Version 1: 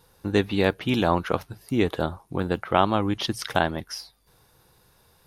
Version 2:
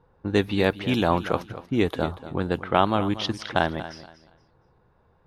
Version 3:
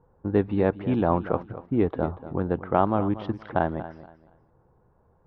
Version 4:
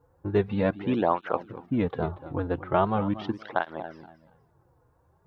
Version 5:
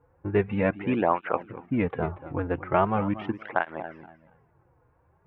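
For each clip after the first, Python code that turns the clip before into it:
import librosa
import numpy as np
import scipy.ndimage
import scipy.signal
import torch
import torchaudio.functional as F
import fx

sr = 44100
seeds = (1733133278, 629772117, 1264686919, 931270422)

y1 = fx.env_lowpass(x, sr, base_hz=1200.0, full_db=-19.5)
y1 = fx.echo_feedback(y1, sr, ms=236, feedback_pct=26, wet_db=-14.5)
y2 = scipy.signal.sosfilt(scipy.signal.butter(2, 1100.0, 'lowpass', fs=sr, output='sos'), y1)
y3 = fx.high_shelf(y2, sr, hz=2200.0, db=11.5)
y3 = fx.flanger_cancel(y3, sr, hz=0.41, depth_ms=5.4)
y4 = fx.high_shelf_res(y3, sr, hz=3200.0, db=-10.5, q=3.0)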